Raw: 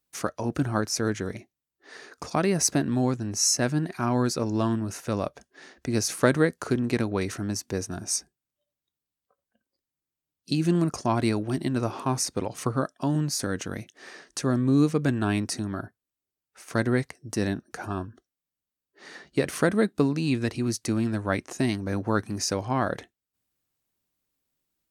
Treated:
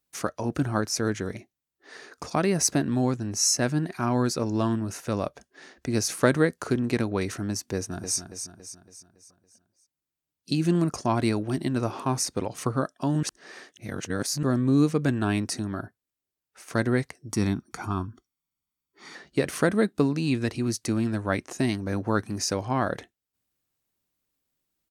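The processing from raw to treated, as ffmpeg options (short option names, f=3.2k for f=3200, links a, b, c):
-filter_complex "[0:a]asplit=2[a][b];[b]afade=t=in:st=7.75:d=0.01,afade=t=out:st=8.18:d=0.01,aecho=0:1:280|560|840|1120|1400|1680:0.375837|0.187919|0.0939594|0.0469797|0.0234898|0.0117449[c];[a][c]amix=inputs=2:normalize=0,asettb=1/sr,asplit=3[d][e][f];[d]atrim=end=17.314[g];[e]atrim=start=17.31:end=19.15,asetpts=PTS-STARTPTS,afade=t=in:d=0.004:c=qsin,afade=t=out:st=1.836:d=0.004:c=qsin,aecho=1:1:0.9:0.65,atrim=end_sample=81144[h];[f]atrim=start=19.146[i];[g][h]acrossfade=d=0.004:c1=hsin:c2=qsin[j];[j][i]acrossfade=d=0.004:c1=qsin:c2=hsin,asplit=3[k][l][m];[k]atrim=end=13.232[n];[l]atrim=start=13.228:end=14.432,asetpts=PTS-STARTPTS,areverse[o];[m]atrim=start=14.428[p];[n][o]acrossfade=d=0.004:c1=hsin:c2=hsin[q];[q][p]acrossfade=d=0.004:c1=hsin:c2=hsin"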